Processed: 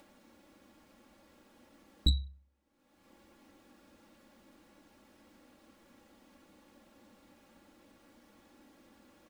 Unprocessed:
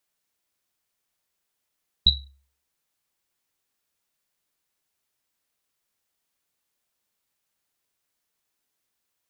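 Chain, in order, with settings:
low-pass filter 1,100 Hz 6 dB per octave
upward compression, threshold −46 dBFS
soft clipping −18.5 dBFS, distortion −17 dB
parametric band 230 Hz +12 dB 2.4 octaves
comb filter 3.6 ms, depth 77%
hum removal 86.64 Hz, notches 3
level −2.5 dB

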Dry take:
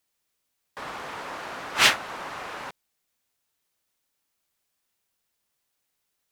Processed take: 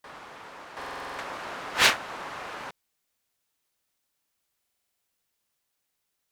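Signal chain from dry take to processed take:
backwards echo 727 ms −7 dB
buffer that repeats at 0:00.77/0:04.59, samples 2,048, times 8
highs frequency-modulated by the lows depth 0.59 ms
level −1.5 dB

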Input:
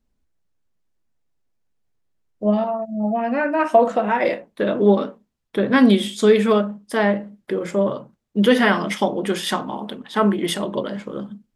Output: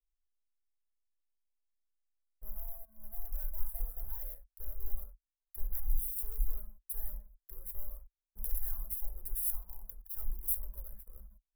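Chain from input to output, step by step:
leveller curve on the samples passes 5
inverse Chebyshev band-stop filter 110–6,800 Hz, stop band 50 dB
level −2.5 dB

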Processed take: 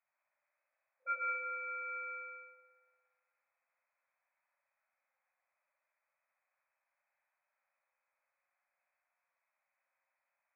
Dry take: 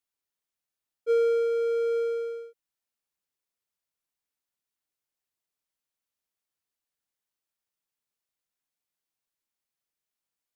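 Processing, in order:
brick-wall band-pass 510–2,600 Hz
spring reverb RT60 1.5 s, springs 57 ms, chirp 50 ms, DRR −3 dB
level +7 dB

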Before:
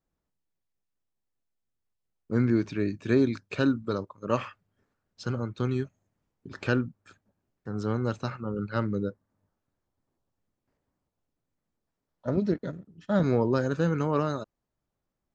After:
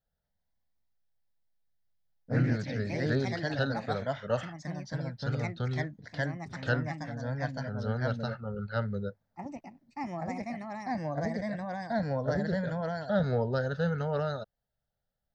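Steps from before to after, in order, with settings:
phaser with its sweep stopped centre 1,600 Hz, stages 8
delay with pitch and tempo change per echo 236 ms, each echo +2 semitones, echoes 3

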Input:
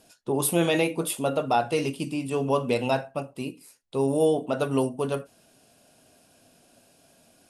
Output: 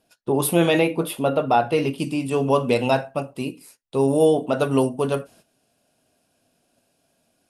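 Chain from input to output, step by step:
noise gate −54 dBFS, range −13 dB
parametric band 7,400 Hz −7 dB 1.1 octaves, from 0:00.79 −14.5 dB, from 0:01.98 −2 dB
level +5 dB

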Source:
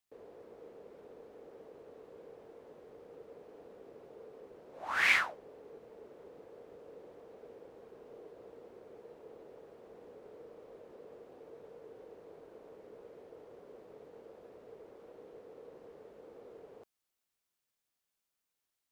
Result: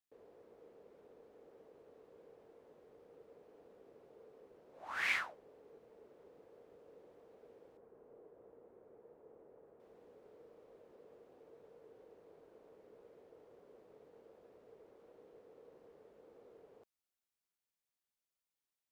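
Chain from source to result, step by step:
0:07.77–0:09.80: low-pass filter 1,500 Hz 12 dB per octave
level −8 dB

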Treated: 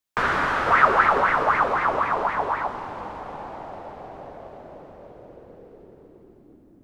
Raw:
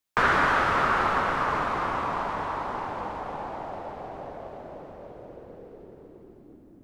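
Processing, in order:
0:00.66–0:02.68: auto-filter bell 3.9 Hz 420–2,100 Hz +15 dB
level −1 dB

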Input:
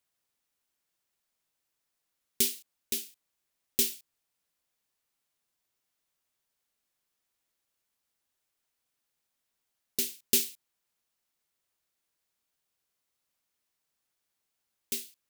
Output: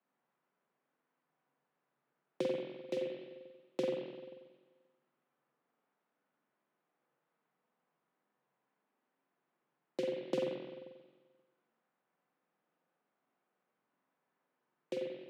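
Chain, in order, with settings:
low-pass filter 1,200 Hz 12 dB per octave
downward compressor, threshold −37 dBFS, peak gain reduction 7.5 dB
frequency shifter +130 Hz
spring reverb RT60 1.4 s, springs 44/48 ms, chirp 50 ms, DRR −2 dB
level +5.5 dB

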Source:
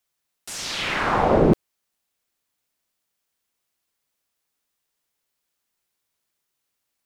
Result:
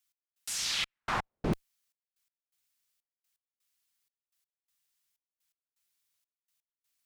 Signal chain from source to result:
gate pattern "x..xxxx.." 125 BPM −60 dB
guitar amp tone stack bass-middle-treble 5-5-5
level +5 dB

